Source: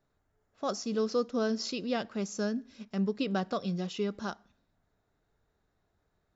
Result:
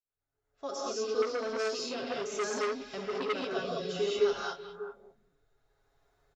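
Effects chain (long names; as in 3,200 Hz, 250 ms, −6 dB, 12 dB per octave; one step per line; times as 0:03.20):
fade in at the beginning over 1.43 s
parametric band 190 Hz −13.5 dB 0.94 octaves
comb filter 7.3 ms, depth 50%
speech leveller within 4 dB 0.5 s
rotating-speaker cabinet horn 7.5 Hz, later 0.6 Hz, at 0:00.82
echo through a band-pass that steps 196 ms, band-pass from 2,900 Hz, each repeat −1.4 octaves, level −8 dB
reverb whose tail is shaped and stops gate 240 ms rising, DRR −5.5 dB
0:01.22–0:03.55: saturating transformer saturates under 1,700 Hz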